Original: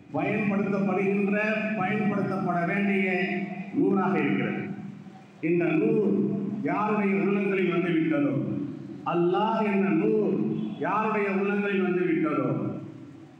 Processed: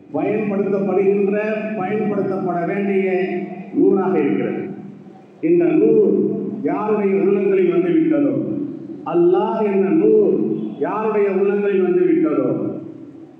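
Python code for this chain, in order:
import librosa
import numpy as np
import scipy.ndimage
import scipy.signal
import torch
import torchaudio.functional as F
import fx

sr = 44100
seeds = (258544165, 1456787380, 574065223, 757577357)

y = fx.peak_eq(x, sr, hz=410.0, db=14.0, octaves=1.7)
y = y * librosa.db_to_amplitude(-2.0)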